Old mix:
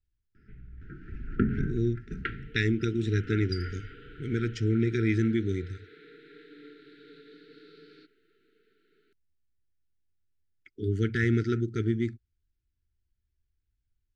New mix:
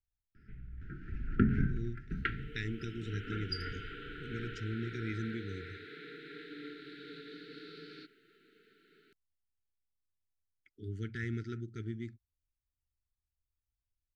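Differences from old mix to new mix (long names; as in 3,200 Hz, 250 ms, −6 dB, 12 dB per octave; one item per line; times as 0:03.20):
speech −11.0 dB
second sound +6.5 dB
master: add parametric band 500 Hz −5.5 dB 1.5 octaves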